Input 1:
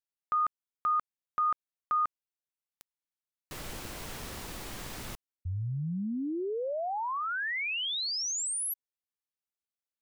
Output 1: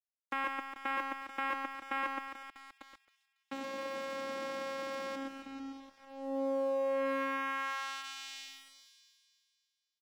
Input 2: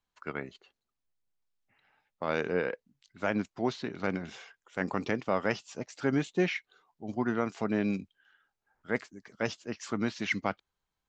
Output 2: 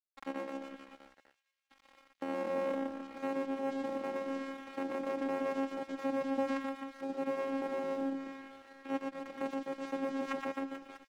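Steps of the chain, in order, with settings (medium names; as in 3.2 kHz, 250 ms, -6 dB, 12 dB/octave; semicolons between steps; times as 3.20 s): spectral levelling over time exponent 0.6; in parallel at +0.5 dB: compression 6:1, threshold -38 dBFS; on the sum: bass shelf 200 Hz -6 dB; band-stop 4.1 kHz, Q 22; vocoder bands 4, saw 271 Hz; reverse bouncing-ball echo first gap 120 ms, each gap 1.2×, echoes 5; level-controlled noise filter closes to 1.2 kHz, open at -27.5 dBFS; treble shelf 4.2 kHz -8.5 dB; crossover distortion -46 dBFS; on a send: feedback echo behind a high-pass 275 ms, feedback 43%, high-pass 3.1 kHz, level -18 dB; on the sum: tape noise reduction on one side only encoder only; trim -7 dB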